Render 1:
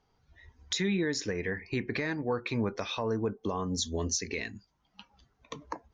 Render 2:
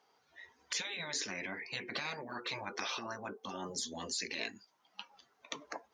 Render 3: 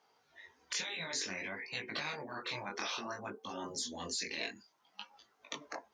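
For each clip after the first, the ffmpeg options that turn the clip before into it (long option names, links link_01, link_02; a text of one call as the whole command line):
ffmpeg -i in.wav -af "highpass=450,afftfilt=real='re*lt(hypot(re,im),0.0398)':imag='im*lt(hypot(re,im),0.0398)':win_size=1024:overlap=0.75,volume=4.5dB" out.wav
ffmpeg -i in.wav -af "flanger=delay=18:depth=6.8:speed=0.57,volume=3dB" out.wav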